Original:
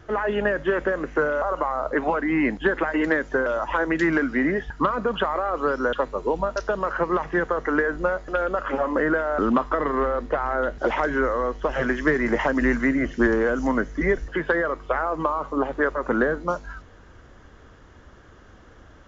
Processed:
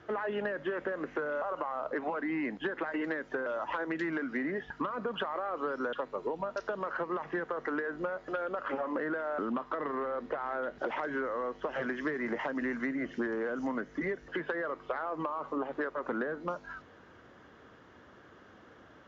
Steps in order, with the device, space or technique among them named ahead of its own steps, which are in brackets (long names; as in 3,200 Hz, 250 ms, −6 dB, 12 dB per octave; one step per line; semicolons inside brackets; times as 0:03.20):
AM radio (band-pass filter 160–4,500 Hz; downward compressor, threshold −27 dBFS, peak gain reduction 11 dB; soft clipping −17.5 dBFS, distortion −27 dB)
level −3.5 dB